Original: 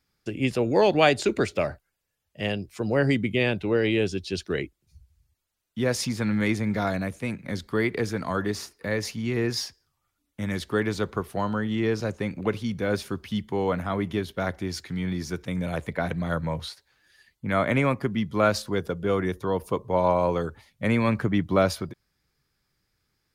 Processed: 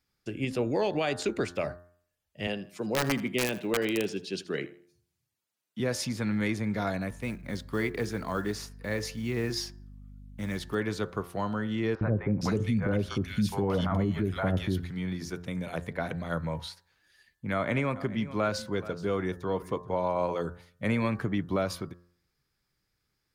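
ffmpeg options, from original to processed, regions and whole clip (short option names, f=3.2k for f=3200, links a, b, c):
-filter_complex "[0:a]asettb=1/sr,asplit=3[a][b][c];[a]atrim=end=2.474[d];[b]atrim=start=2.47:end=5.8,asetpts=PTS-STARTPTS,afade=t=in:d=0.004:c=qsin,afade=t=out:st=3.326:d=0.004:c=qsin,highpass=f=140:w=0.5412,highpass=f=140:w=1.3066,aeval=exprs='(mod(5.01*val(0)+1,2)-1)/5.01':c=same,aecho=1:1:80|160|240:0.133|0.0373|0.0105,atrim=end_sample=146853[e];[c]atrim=start=5.796[f];[d][e]acrossfade=d=0.004:c1=hsin:c2=qsin[g];[g][f]acrossfade=d=0.004:c1=qsin:c2=hsin,asettb=1/sr,asplit=3[h][i][j];[h]atrim=end=7.104[k];[i]atrim=start=7.1:end=10.75,asetpts=PTS-STARTPTS,afade=t=in:d=0.004:c=qsin,afade=t=out:st=3.646:d=0.004:c=qsin,acrusher=bits=7:mode=log:mix=0:aa=0.000001,aeval=exprs='val(0)+0.00794*(sin(2*PI*50*n/s)+sin(2*PI*2*50*n/s)/2+sin(2*PI*3*50*n/s)/3+sin(2*PI*4*50*n/s)/4+sin(2*PI*5*50*n/s)/5)':c=same[l];[j]atrim=start=10.746[m];[k][l]acrossfade=d=0.004:c1=hsin:c2=qsin[n];[n][m]acrossfade=d=0.004:c1=qsin:c2=hsin,asettb=1/sr,asplit=3[o][p][q];[o]atrim=end=11.954[r];[p]atrim=start=11.95:end=14.84,asetpts=PTS-STARTPTS,afade=t=in:d=0.004:c=qsin,afade=t=out:st=2.886:d=0.004:c=qsin,lowshelf=f=200:g=8.5,acontrast=54,acrossover=split=650|2000[s][t][u];[s]adelay=60[v];[u]adelay=460[w];[v][t][w]amix=inputs=3:normalize=0,atrim=end_sample=127449[x];[q]atrim=start=14.836[y];[r][x]acrossfade=d=0.004:c1=hsin:c2=qsin[z];[z][y]acrossfade=d=0.004:c1=qsin:c2=hsin,asettb=1/sr,asplit=3[aa][ab][ac];[aa]atrim=end=17.534[ad];[ab]atrim=start=17.53:end=20.31,asetpts=PTS-STARTPTS,afade=t=in:d=0.004:c=qsin,afade=t=out:st=2.776:d=0.004:c=qsin,equalizer=f=12k:t=o:w=0.51:g=-7.5,aecho=1:1:427:0.126,atrim=end_sample=122598[ae];[ac]atrim=start=20.306[af];[ad][ae]acrossfade=d=0.004:c1=hsin:c2=qsin[ag];[ag][af]acrossfade=d=0.004:c1=qsin:c2=hsin,bandreject=f=87.74:t=h:w=4,bandreject=f=175.48:t=h:w=4,bandreject=f=263.22:t=h:w=4,bandreject=f=350.96:t=h:w=4,bandreject=f=438.7:t=h:w=4,bandreject=f=526.44:t=h:w=4,bandreject=f=614.18:t=h:w=4,bandreject=f=701.92:t=h:w=4,bandreject=f=789.66:t=h:w=4,bandreject=f=877.4:t=h:w=4,bandreject=f=965.14:t=h:w=4,bandreject=f=1.05288k:t=h:w=4,bandreject=f=1.14062k:t=h:w=4,bandreject=f=1.22836k:t=h:w=4,bandreject=f=1.3161k:t=h:w=4,bandreject=f=1.40384k:t=h:w=4,bandreject=f=1.49158k:t=h:w=4,bandreject=f=1.57932k:t=h:w=4,bandreject=f=1.66706k:t=h:w=4,bandreject=f=1.7548k:t=h:w=4,bandreject=f=1.84254k:t=h:w=4,alimiter=limit=-14.5dB:level=0:latency=1:release=119,volume=-4dB"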